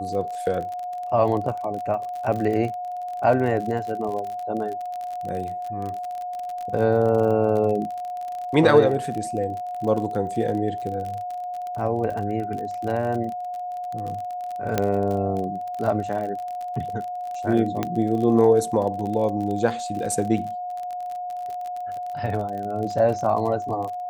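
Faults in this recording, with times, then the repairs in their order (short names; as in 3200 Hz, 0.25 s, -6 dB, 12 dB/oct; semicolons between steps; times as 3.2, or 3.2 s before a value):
crackle 41/s -29 dBFS
tone 720 Hz -28 dBFS
14.78 pop -7 dBFS
17.83 pop -10 dBFS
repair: de-click; notch 720 Hz, Q 30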